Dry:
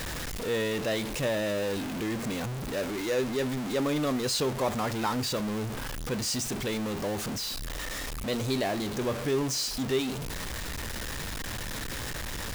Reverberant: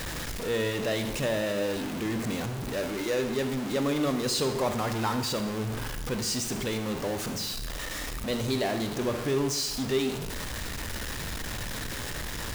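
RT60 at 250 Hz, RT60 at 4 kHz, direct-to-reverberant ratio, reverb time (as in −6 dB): 0.90 s, 0.80 s, 8.0 dB, 0.90 s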